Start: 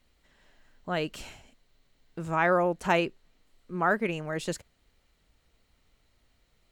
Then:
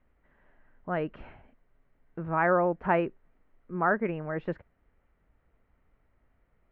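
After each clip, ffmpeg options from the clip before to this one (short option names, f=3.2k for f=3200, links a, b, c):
-af "lowpass=f=1.9k:w=0.5412,lowpass=f=1.9k:w=1.3066"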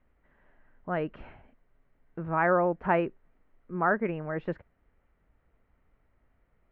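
-af anull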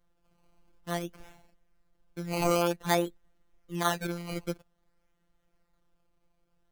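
-af "acrusher=samples=17:mix=1:aa=0.000001:lfo=1:lforange=17:lforate=0.52,afftfilt=real='hypot(re,im)*cos(PI*b)':imag='0':win_size=1024:overlap=0.75"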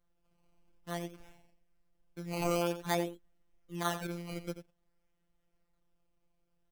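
-filter_complex "[0:a]asplit=2[a][b];[b]adelay=87.46,volume=-11dB,highshelf=f=4k:g=-1.97[c];[a][c]amix=inputs=2:normalize=0,volume=-6dB"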